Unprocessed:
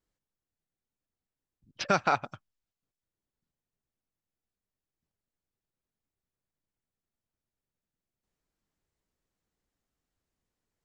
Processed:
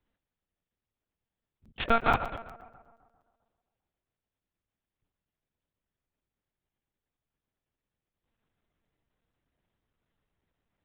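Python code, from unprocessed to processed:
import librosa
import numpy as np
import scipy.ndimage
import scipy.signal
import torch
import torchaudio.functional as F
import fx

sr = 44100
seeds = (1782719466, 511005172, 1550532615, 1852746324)

p1 = fx.level_steps(x, sr, step_db=11)
p2 = x + (p1 * 10.0 ** (-1.5 / 20.0))
p3 = fx.tube_stage(p2, sr, drive_db=17.0, bias=0.35)
p4 = fx.echo_tape(p3, sr, ms=133, feedback_pct=64, wet_db=-13.0, lp_hz=2100.0, drive_db=2.0, wow_cents=8)
p5 = fx.lpc_monotone(p4, sr, seeds[0], pitch_hz=230.0, order=8)
p6 = fx.buffer_crackle(p5, sr, first_s=0.69, period_s=0.12, block=256, kind='zero')
y = p6 * 10.0 ** (2.5 / 20.0)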